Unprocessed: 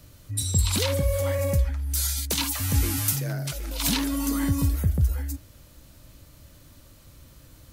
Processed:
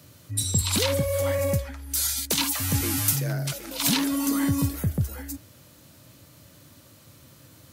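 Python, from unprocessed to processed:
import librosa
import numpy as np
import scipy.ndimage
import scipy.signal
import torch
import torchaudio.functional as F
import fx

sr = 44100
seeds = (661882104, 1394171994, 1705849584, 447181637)

y = scipy.signal.sosfilt(scipy.signal.butter(4, 100.0, 'highpass', fs=sr, output='sos'), x)
y = y * 10.0 ** (2.0 / 20.0)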